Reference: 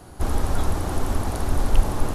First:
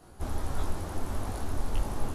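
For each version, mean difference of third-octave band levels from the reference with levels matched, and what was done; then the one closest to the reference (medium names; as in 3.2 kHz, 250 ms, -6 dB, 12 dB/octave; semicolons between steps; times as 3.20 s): 1.0 dB: detune thickener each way 54 cents; trim -5.5 dB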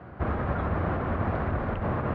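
9.5 dB: peak limiter -13.5 dBFS, peak gain reduction 8.5 dB; cabinet simulation 100–2100 Hz, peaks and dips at 280 Hz -7 dB, 400 Hz -5 dB, 850 Hz -7 dB; trim +4 dB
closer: first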